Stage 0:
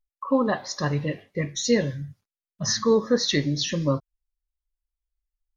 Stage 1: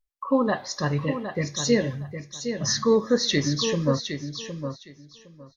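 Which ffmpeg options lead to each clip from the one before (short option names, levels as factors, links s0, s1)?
-af "aecho=1:1:762|1524|2286:0.376|0.0677|0.0122"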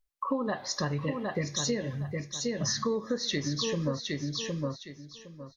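-af "acompressor=threshold=0.0355:ratio=6,volume=1.19"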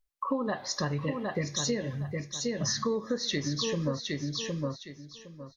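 -af anull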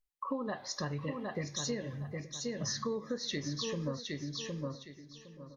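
-filter_complex "[0:a]asplit=2[s0][s1];[s1]adelay=874.6,volume=0.141,highshelf=f=4000:g=-19.7[s2];[s0][s2]amix=inputs=2:normalize=0,volume=0.501"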